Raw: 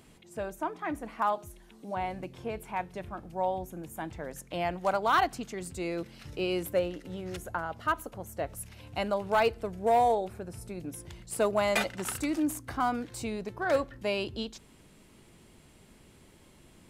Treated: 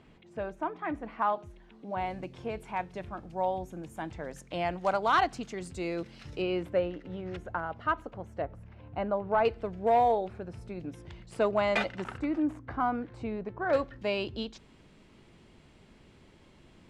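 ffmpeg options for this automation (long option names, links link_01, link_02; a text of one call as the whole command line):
ffmpeg -i in.wav -af "asetnsamples=nb_out_samples=441:pad=0,asendcmd='1.98 lowpass f 6500;6.42 lowpass f 2700;8.42 lowpass f 1400;9.45 lowpass f 3600;12.04 lowpass f 1800;13.73 lowpass f 4700',lowpass=3000" out.wav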